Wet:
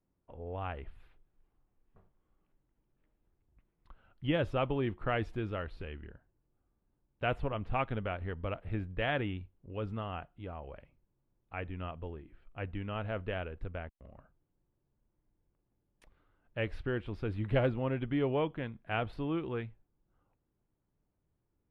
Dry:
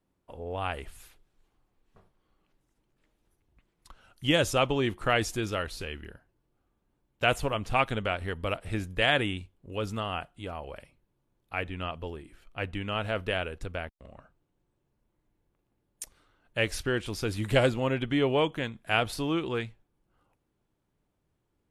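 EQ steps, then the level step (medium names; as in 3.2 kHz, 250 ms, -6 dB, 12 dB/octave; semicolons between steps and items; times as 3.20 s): distance through air 470 m; bass shelf 150 Hz +4 dB; -5.0 dB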